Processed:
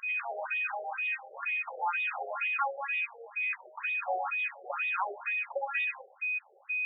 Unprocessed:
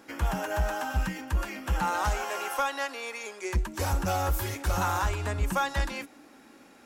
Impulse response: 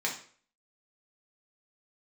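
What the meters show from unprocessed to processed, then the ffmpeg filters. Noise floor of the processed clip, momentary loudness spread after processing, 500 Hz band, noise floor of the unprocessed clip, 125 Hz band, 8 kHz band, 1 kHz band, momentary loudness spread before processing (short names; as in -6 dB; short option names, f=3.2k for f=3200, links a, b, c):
-60 dBFS, 3 LU, -5.5 dB, -55 dBFS, under -40 dB, under -40 dB, -4.5 dB, 6 LU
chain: -filter_complex "[0:a]aeval=exprs='val(0)+0.0282*sin(2*PI*2500*n/s)':c=same,asplit=2[a][b];[1:a]atrim=start_sample=2205,adelay=62[c];[b][c]afir=irnorm=-1:irlink=0,volume=-15.5dB[d];[a][d]amix=inputs=2:normalize=0,afftfilt=real='re*between(b*sr/1024,540*pow(2700/540,0.5+0.5*sin(2*PI*2.1*pts/sr))/1.41,540*pow(2700/540,0.5+0.5*sin(2*PI*2.1*pts/sr))*1.41)':imag='im*between(b*sr/1024,540*pow(2700/540,0.5+0.5*sin(2*PI*2.1*pts/sr))/1.41,540*pow(2700/540,0.5+0.5*sin(2*PI*2.1*pts/sr))*1.41)':win_size=1024:overlap=0.75"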